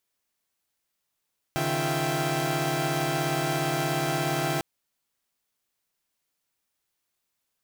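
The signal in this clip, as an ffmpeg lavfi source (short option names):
-f lavfi -i "aevalsrc='0.0355*((2*mod(138.59*t,1)-1)+(2*mod(155.56*t,1)-1)+(2*mod(349.23*t,1)-1)+(2*mod(659.26*t,1)-1)+(2*mod(783.99*t,1)-1))':d=3.05:s=44100"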